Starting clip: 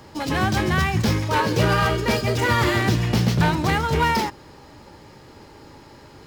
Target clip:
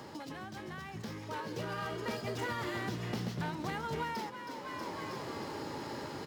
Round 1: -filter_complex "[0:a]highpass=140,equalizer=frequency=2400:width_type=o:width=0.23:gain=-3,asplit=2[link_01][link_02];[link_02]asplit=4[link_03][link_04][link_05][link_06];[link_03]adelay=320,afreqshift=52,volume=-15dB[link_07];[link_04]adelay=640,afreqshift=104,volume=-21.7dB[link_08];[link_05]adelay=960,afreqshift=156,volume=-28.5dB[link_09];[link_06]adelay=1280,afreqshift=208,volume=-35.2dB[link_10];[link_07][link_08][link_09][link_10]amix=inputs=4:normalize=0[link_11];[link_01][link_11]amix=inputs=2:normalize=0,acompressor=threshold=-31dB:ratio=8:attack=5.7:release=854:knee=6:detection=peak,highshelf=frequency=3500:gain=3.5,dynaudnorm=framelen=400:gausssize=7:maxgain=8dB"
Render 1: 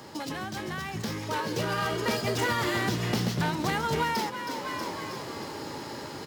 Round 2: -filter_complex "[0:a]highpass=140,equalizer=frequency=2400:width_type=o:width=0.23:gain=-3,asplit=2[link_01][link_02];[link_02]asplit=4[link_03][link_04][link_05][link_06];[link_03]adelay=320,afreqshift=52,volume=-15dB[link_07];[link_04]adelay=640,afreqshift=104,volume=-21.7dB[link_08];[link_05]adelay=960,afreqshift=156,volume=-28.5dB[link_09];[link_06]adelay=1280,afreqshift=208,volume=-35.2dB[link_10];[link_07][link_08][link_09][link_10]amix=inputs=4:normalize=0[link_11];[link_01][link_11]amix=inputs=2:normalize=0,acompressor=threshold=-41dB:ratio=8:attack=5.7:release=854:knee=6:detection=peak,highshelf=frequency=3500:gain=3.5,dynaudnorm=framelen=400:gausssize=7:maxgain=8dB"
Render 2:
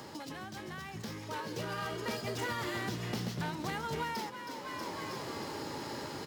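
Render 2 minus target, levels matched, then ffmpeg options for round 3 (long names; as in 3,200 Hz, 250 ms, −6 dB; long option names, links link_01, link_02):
8,000 Hz band +4.0 dB
-filter_complex "[0:a]highpass=140,equalizer=frequency=2400:width_type=o:width=0.23:gain=-3,asplit=2[link_01][link_02];[link_02]asplit=4[link_03][link_04][link_05][link_06];[link_03]adelay=320,afreqshift=52,volume=-15dB[link_07];[link_04]adelay=640,afreqshift=104,volume=-21.7dB[link_08];[link_05]adelay=960,afreqshift=156,volume=-28.5dB[link_09];[link_06]adelay=1280,afreqshift=208,volume=-35.2dB[link_10];[link_07][link_08][link_09][link_10]amix=inputs=4:normalize=0[link_11];[link_01][link_11]amix=inputs=2:normalize=0,acompressor=threshold=-41dB:ratio=8:attack=5.7:release=854:knee=6:detection=peak,highshelf=frequency=3500:gain=-2.5,dynaudnorm=framelen=400:gausssize=7:maxgain=8dB"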